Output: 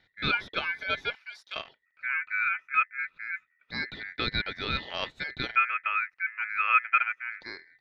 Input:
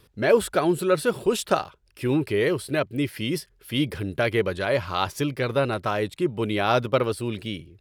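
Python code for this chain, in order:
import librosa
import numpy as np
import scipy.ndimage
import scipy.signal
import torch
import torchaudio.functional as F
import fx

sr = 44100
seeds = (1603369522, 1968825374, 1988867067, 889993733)

y = fx.filter_lfo_lowpass(x, sr, shape='square', hz=0.27, low_hz=630.0, high_hz=2000.0, q=4.8)
y = y * np.sin(2.0 * np.pi * 1900.0 * np.arange(len(y)) / sr)
y = fx.differentiator(y, sr, at=(1.15, 1.56))
y = y * 10.0 ** (-8.0 / 20.0)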